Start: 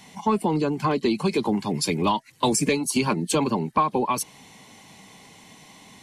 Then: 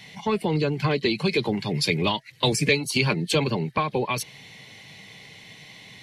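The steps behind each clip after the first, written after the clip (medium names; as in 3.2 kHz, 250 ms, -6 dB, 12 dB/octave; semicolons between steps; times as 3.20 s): graphic EQ 125/250/500/1000/2000/4000/8000 Hz +10/-6/+5/-7/+9/+8/-6 dB; trim -2 dB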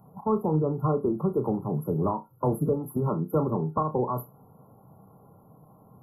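FFT band-reject 1.4–11 kHz; flutter echo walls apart 5.5 m, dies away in 0.21 s; trim -2 dB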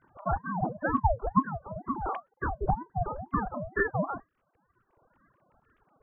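formants replaced by sine waves; reverb removal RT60 1.3 s; ring modulator with a swept carrier 430 Hz, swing 60%, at 2.1 Hz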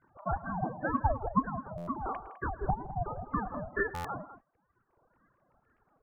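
low-pass 2.5 kHz 24 dB/octave; on a send: multi-tap echo 109/162/206 ms -18.5/-18/-13.5 dB; on the sum: buffer glitch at 1.77/3.94 s, samples 512, times 8; trim -3.5 dB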